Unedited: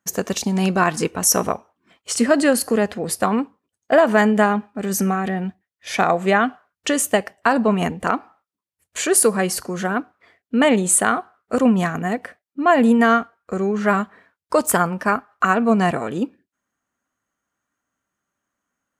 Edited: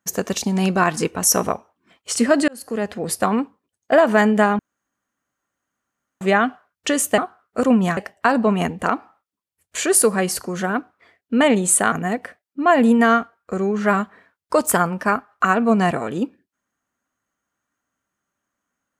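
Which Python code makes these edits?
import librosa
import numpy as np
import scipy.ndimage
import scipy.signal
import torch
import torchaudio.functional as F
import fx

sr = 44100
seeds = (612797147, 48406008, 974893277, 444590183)

y = fx.edit(x, sr, fx.fade_in_span(start_s=2.48, length_s=0.57),
    fx.room_tone_fill(start_s=4.59, length_s=1.62),
    fx.move(start_s=11.13, length_s=0.79, to_s=7.18), tone=tone)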